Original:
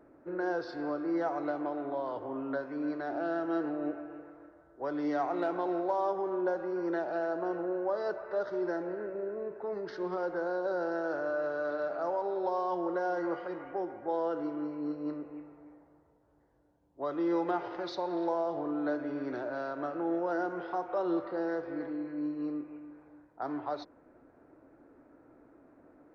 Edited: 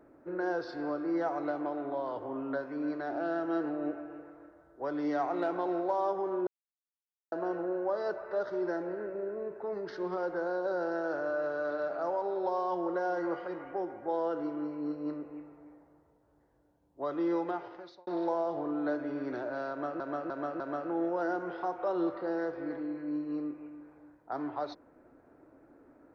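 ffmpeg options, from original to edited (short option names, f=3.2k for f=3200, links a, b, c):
-filter_complex "[0:a]asplit=7[a][b][c][d][e][f][g];[a]atrim=end=6.47,asetpts=PTS-STARTPTS,afade=t=out:st=6.466:d=0.004:c=hsin[h];[b]atrim=start=6.47:end=7.32,asetpts=PTS-STARTPTS,volume=0[i];[c]atrim=start=7.32:end=18.07,asetpts=PTS-STARTPTS,afade=t=in:d=0.004:c=hsin,afade=t=out:st=9.93:d=0.82[j];[d]atrim=start=18.07:end=20.002,asetpts=PTS-STARTPTS,afade=t=in:d=0.004:c=hsin[k];[e]atrim=start=19.698:end=20.002[l];[f]atrim=start=19.698:end=20.002[m];[g]atrim=start=19.698[n];[h][i][j][k]concat=n=4:v=0:a=1[o];[o][l]acrossfade=d=0.004:c1=hsin:c2=hsin[p];[p][m]acrossfade=d=0.004:c1=hsin:c2=hsin[q];[q][n]acrossfade=d=0.004:c1=hsin:c2=hsin"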